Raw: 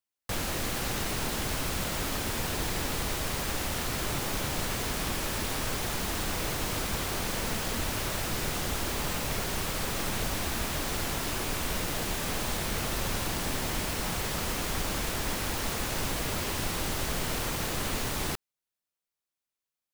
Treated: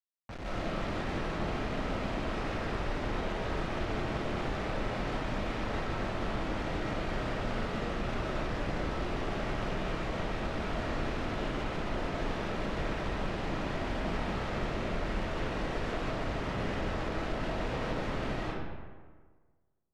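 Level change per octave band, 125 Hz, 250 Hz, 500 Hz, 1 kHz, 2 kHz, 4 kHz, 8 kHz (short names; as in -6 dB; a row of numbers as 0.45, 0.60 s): -1.5, +0.5, +1.0, -1.5, -3.5, -10.0, -22.0 dB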